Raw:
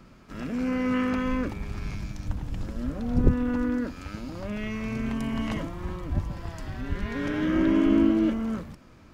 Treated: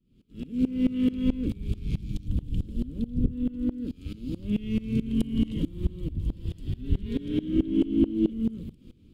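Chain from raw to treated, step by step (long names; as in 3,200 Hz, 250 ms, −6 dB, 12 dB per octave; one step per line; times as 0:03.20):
automatic gain control gain up to 14 dB
in parallel at −5 dB: gain into a clipping stage and back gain 15 dB
on the sum: drawn EQ curve 250 Hz 0 dB, 460 Hz −5 dB, 680 Hz −29 dB, 1,800 Hz −24 dB, 3,200 Hz −1 dB, 5,900 Hz −16 dB, 8,400 Hz −6 dB
tremolo with a ramp in dB swelling 4.6 Hz, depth 22 dB
level −6 dB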